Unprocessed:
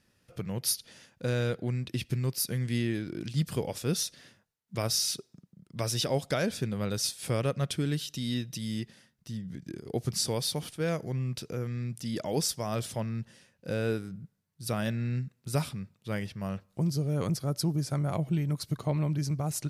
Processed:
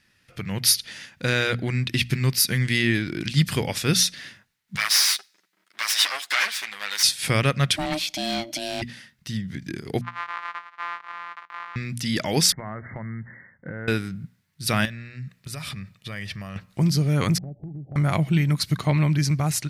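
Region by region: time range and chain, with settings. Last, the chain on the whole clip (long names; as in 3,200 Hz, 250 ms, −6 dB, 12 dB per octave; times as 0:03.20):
0:04.76–0:07.03: lower of the sound and its delayed copy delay 9.9 ms + high-pass filter 1,200 Hz
0:07.76–0:08.82: hard clipping −27.5 dBFS + ring modulation 460 Hz
0:10.01–0:11.76: samples sorted by size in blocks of 256 samples + four-pole ladder band-pass 1,200 Hz, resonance 70%
0:12.52–0:13.88: linear-phase brick-wall low-pass 2,200 Hz + downward compressor 12 to 1, threshold −37 dBFS
0:14.85–0:16.56: comb filter 1.7 ms, depth 32% + downward compressor 12 to 1, threshold −39 dBFS
0:17.38–0:17.96: Chebyshev low-pass filter 830 Hz, order 10 + downward compressor 10 to 1, threshold −41 dBFS
whole clip: graphic EQ with 10 bands 500 Hz −6 dB, 2,000 Hz +9 dB, 4,000 Hz +4 dB; automatic gain control gain up to 6.5 dB; mains-hum notches 60/120/180/240 Hz; level +2.5 dB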